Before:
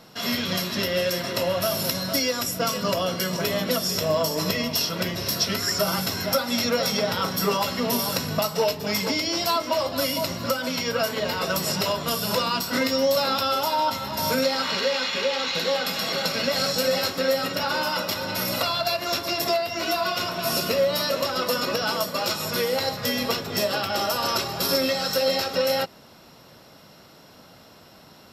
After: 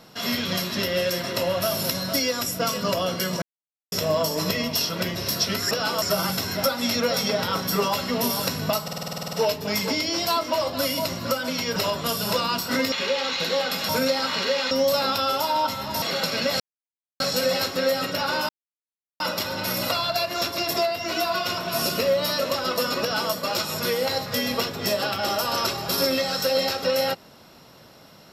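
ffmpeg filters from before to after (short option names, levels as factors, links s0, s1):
-filter_complex "[0:a]asplit=22[s0][s1][s2][s3][s4][s5][s6][s7][s8][s9][s10][s11][s12][s13][s14][s15][s16][s17][s18][s19][s20][s21];[s0]atrim=end=3.42,asetpts=PTS-STARTPTS,afade=t=out:st=3.416:d=0.004:c=hsin[s22];[s1]atrim=start=3.42:end=3.92,asetpts=PTS-STARTPTS,volume=0[s23];[s2]atrim=start=3.92:end=5.712,asetpts=PTS-STARTPTS,afade=t=in:d=0.004:c=hsin[s24];[s3]atrim=start=21.728:end=22.042[s25];[s4]atrim=start=5.708:end=8.572[s26];[s5]atrim=start=8.518:end=8.572[s27];[s6]atrim=start=8.518:end=8.572[s28];[s7]atrim=start=8.518:end=8.572[s29];[s8]atrim=start=8.518:end=8.572[s30];[s9]atrim=start=8.518:end=8.572[s31];[s10]atrim=start=8.518:end=8.572[s32];[s11]atrim=start=8.518:end=8.572[s33];[s12]atrim=start=8.518:end=8.572[s34];[s13]atrim=start=8.518:end=8.572[s35];[s14]atrim=start=8.518:end=10.952[s36];[s15]atrim=start=11.778:end=12.942[s37];[s16]atrim=start=15.068:end=16.042[s38];[s17]atrim=start=14.248:end=15.072[s39];[s18]atrim=start=12.938:end=14.252[s40];[s19]atrim=start=16.038:end=16.62,asetpts=PTS-STARTPTS,afade=t=out:st=0.578:d=0.004:c=hsin,apad=pad_dur=0.6[s41];[s20]atrim=start=16.62:end=17.91,asetpts=PTS-STARTPTS,afade=t=in:d=0.004:c=hsin,afade=t=out:st=1.286:d=0.004:c=hsin,apad=pad_dur=0.71[s42];[s21]atrim=start=17.91,asetpts=PTS-STARTPTS,afade=t=in:d=0.004:c=hsin[s43];[s22][s23][s24]concat=n=3:v=0:a=1[s44];[s44][s25]acrossfade=d=0.004:c1=hsin:c2=hsin[s45];[s45][s26]acrossfade=d=0.004:c1=hsin:c2=hsin[s46];[s46][s27]acrossfade=d=0.004:c1=hsin:c2=hsin[s47];[s47][s28]acrossfade=d=0.004:c1=hsin:c2=hsin[s48];[s48][s29]acrossfade=d=0.004:c1=hsin:c2=hsin[s49];[s49][s30]acrossfade=d=0.004:c1=hsin:c2=hsin[s50];[s50][s31]acrossfade=d=0.004:c1=hsin:c2=hsin[s51];[s51][s32]acrossfade=d=0.004:c1=hsin:c2=hsin[s52];[s52][s33]acrossfade=d=0.004:c1=hsin:c2=hsin[s53];[s53][s34]acrossfade=d=0.004:c1=hsin:c2=hsin[s54];[s54][s35]acrossfade=d=0.004:c1=hsin:c2=hsin[s55];[s55][s36]acrossfade=d=0.004:c1=hsin:c2=hsin[s56];[s56][s37]acrossfade=d=0.004:c1=hsin:c2=hsin[s57];[s57][s38]acrossfade=d=0.004:c1=hsin:c2=hsin[s58];[s58][s39]acrossfade=d=0.004:c1=hsin:c2=hsin[s59];[s59][s40]acrossfade=d=0.004:c1=hsin:c2=hsin[s60];[s41][s42][s43]concat=n=3:v=0:a=1[s61];[s60][s61]acrossfade=d=0.004:c1=hsin:c2=hsin"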